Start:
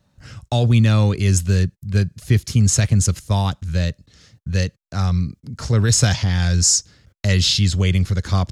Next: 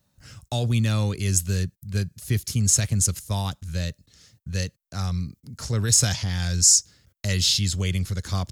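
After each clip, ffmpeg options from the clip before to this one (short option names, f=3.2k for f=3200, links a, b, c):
-af "aemphasis=mode=production:type=50fm,volume=-7.5dB"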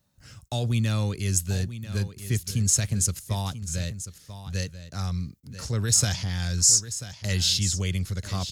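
-af "aecho=1:1:989:0.237,volume=-2.5dB"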